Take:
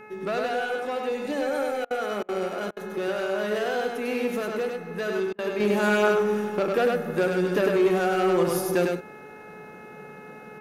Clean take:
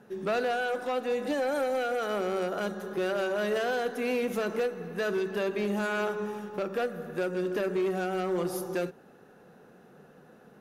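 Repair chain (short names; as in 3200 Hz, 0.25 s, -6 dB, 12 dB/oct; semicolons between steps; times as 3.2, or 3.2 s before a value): de-hum 427 Hz, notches 6; interpolate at 1.85/2.23/2.71/5.33, 55 ms; inverse comb 0.1 s -3 dB; gain 0 dB, from 5.6 s -6.5 dB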